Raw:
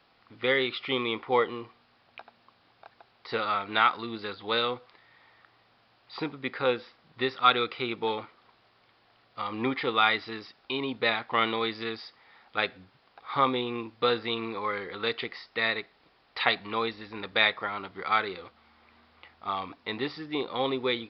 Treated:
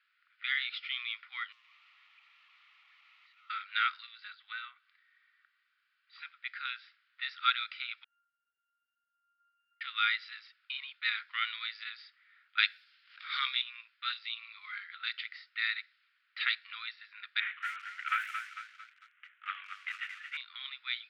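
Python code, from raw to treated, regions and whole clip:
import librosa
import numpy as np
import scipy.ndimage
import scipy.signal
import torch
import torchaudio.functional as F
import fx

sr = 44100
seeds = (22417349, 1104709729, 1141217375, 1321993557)

y = fx.chain(x, sr, fx.clip_1bit(),
    fx.lowpass(hz=2000.0, slope=12),
    fx.fixed_phaser(hz=310.0, stages=8), at=(1.52, 3.5))
y = fx.chain(y, sr, fx.env_lowpass_down(base_hz=1900.0, full_db=-25.0),
    fx.peak_eq(hz=2200.0, db=-3.5, octaves=1.7),
    fx.comb(ms=2.6, depth=0.31), at=(4.12, 6.2))
y = fx.chain(y, sr, fx.delta_mod(bps=16000, step_db=-46.0),
    fx.octave_resonator(note='F', decay_s=0.77), at=(8.04, 9.81))
y = fx.chain(y, sr, fx.high_shelf(hz=2100.0, db=11.5),
    fx.pre_swell(db_per_s=110.0), at=(12.58, 13.62))
y = fx.chain(y, sr, fx.peak_eq(hz=1600.0, db=-13.5, octaves=0.48),
    fx.band_squash(depth_pct=70), at=(14.12, 14.72))
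y = fx.chain(y, sr, fx.cvsd(bps=16000),
    fx.transient(attack_db=9, sustain_db=4),
    fx.echo_crushed(ms=225, feedback_pct=55, bits=7, wet_db=-7), at=(17.4, 20.37))
y = scipy.signal.sosfilt(scipy.signal.cheby1(5, 1.0, 1400.0, 'highpass', fs=sr, output='sos'), y)
y = fx.env_lowpass(y, sr, base_hz=2300.0, full_db=-26.5)
y = y * librosa.db_to_amplitude(-3.5)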